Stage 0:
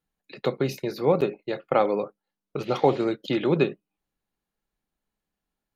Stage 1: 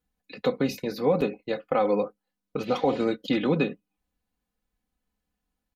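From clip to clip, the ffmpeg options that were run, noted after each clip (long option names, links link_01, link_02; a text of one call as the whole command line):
ffmpeg -i in.wav -af "equalizer=frequency=83:width_type=o:width=1.4:gain=11,aecho=1:1:4:0.73,alimiter=limit=-11.5dB:level=0:latency=1:release=92,volume=-1.5dB" out.wav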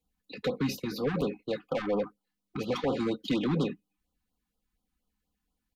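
ffmpeg -i in.wav -filter_complex "[0:a]acrossover=split=170|5400[link_01][link_02][link_03];[link_02]asoftclip=type=tanh:threshold=-24.5dB[link_04];[link_01][link_04][link_03]amix=inputs=3:normalize=0,afftfilt=real='re*(1-between(b*sr/1024,490*pow(2100/490,0.5+0.5*sin(2*PI*4.2*pts/sr))/1.41,490*pow(2100/490,0.5+0.5*sin(2*PI*4.2*pts/sr))*1.41))':imag='im*(1-between(b*sr/1024,490*pow(2100/490,0.5+0.5*sin(2*PI*4.2*pts/sr))/1.41,490*pow(2100/490,0.5+0.5*sin(2*PI*4.2*pts/sr))*1.41))':win_size=1024:overlap=0.75" out.wav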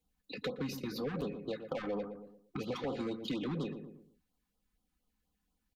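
ffmpeg -i in.wav -filter_complex "[0:a]asplit=2[link_01][link_02];[link_02]adelay=117,lowpass=frequency=920:poles=1,volume=-10.5dB,asplit=2[link_03][link_04];[link_04]adelay=117,lowpass=frequency=920:poles=1,volume=0.35,asplit=2[link_05][link_06];[link_06]adelay=117,lowpass=frequency=920:poles=1,volume=0.35,asplit=2[link_07][link_08];[link_08]adelay=117,lowpass=frequency=920:poles=1,volume=0.35[link_09];[link_03][link_05][link_07][link_09]amix=inputs=4:normalize=0[link_10];[link_01][link_10]amix=inputs=2:normalize=0,acompressor=threshold=-38dB:ratio=2.5" out.wav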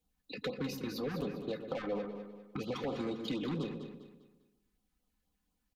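ffmpeg -i in.wav -af "aecho=1:1:200|400|600|800:0.316|0.114|0.041|0.0148" out.wav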